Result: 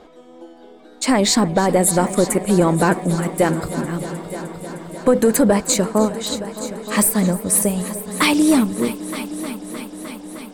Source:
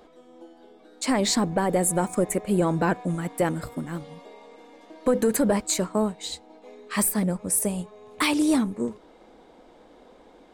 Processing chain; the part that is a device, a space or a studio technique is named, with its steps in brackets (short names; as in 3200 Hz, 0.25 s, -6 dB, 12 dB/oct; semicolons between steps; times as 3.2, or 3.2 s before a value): multi-head tape echo (multi-head echo 0.307 s, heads all three, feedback 64%, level -18 dB; wow and flutter 9.4 cents); gain +7 dB